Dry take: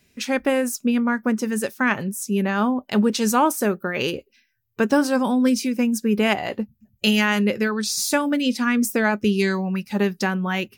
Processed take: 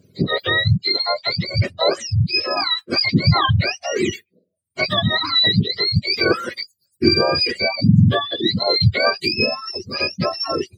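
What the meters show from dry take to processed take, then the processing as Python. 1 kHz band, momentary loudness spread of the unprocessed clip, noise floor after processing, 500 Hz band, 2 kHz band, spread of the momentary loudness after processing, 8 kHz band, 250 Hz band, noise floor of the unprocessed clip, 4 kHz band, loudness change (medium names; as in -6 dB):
+0.5 dB, 6 LU, -71 dBFS, +1.0 dB, +2.5 dB, 8 LU, -10.0 dB, -3.0 dB, -66 dBFS, +12.0 dB, +3.5 dB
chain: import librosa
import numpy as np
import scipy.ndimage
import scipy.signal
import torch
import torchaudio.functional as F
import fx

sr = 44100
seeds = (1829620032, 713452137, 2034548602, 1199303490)

y = fx.octave_mirror(x, sr, pivot_hz=1000.0)
y = fx.dereverb_blind(y, sr, rt60_s=0.71)
y = fx.notch_comb(y, sr, f0_hz=890.0)
y = y * librosa.db_to_amplitude(5.5)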